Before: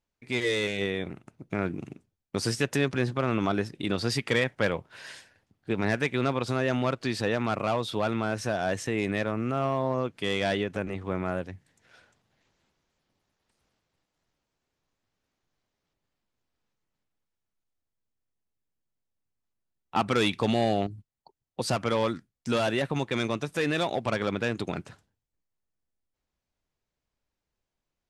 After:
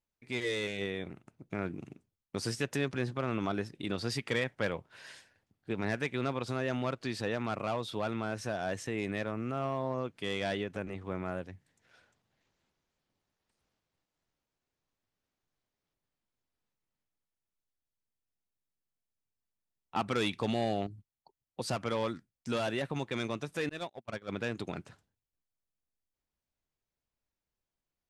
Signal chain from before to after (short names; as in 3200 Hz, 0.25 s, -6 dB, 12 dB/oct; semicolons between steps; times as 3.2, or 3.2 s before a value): 23.69–24.29 gate -25 dBFS, range -39 dB; gain -6.5 dB